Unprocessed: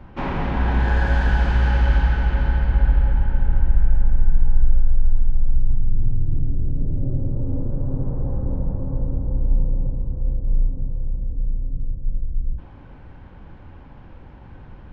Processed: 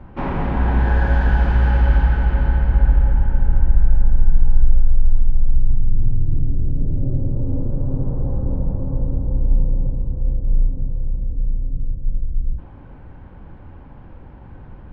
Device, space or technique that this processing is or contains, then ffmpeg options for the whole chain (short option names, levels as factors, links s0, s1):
through cloth: -af "highshelf=f=2700:g=-11.5,volume=1.33"